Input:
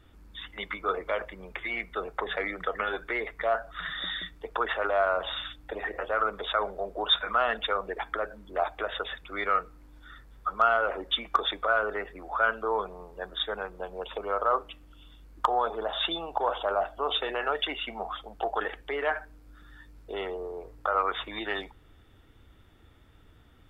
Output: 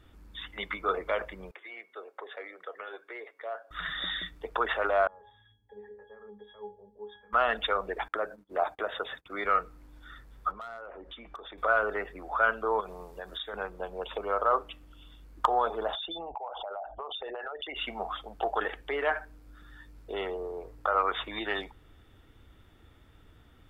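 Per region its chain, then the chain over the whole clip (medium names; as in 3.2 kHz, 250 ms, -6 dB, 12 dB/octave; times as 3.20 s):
1.51–3.71 s: ladder high-pass 310 Hz, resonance 30% + feedback comb 550 Hz, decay 0.55 s, mix 50%
5.07–7.33 s: treble shelf 3.4 kHz -11 dB + pitch-class resonator G#, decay 0.31 s
8.08–9.45 s: gate -47 dBFS, range -27 dB + high-pass 110 Hz + dynamic bell 2.9 kHz, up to -5 dB, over -49 dBFS, Q 0.96
10.51–11.58 s: low-pass 1.6 kHz 6 dB/octave + hard clipper -18.5 dBFS + compression 3:1, threshold -45 dBFS
12.80–13.54 s: treble shelf 3 kHz +8.5 dB + compression 5:1, threshold -35 dBFS
15.95–17.76 s: resonances exaggerated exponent 2 + peaking EQ 830 Hz +5 dB 0.39 oct + compression 10:1, threshold -34 dBFS
whole clip: none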